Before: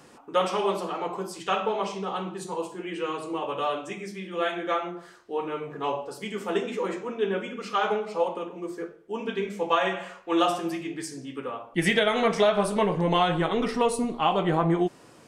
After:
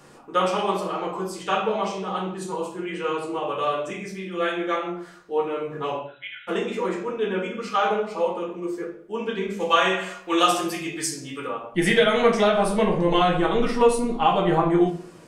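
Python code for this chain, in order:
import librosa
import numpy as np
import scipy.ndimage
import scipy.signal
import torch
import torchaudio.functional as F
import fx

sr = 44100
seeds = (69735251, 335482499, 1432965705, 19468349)

y = fx.brickwall_bandpass(x, sr, low_hz=1300.0, high_hz=4000.0, at=(5.98, 6.47), fade=0.02)
y = fx.high_shelf(y, sr, hz=2600.0, db=10.0, at=(9.6, 11.47))
y = fx.room_shoebox(y, sr, seeds[0], volume_m3=30.0, walls='mixed', distance_m=0.54)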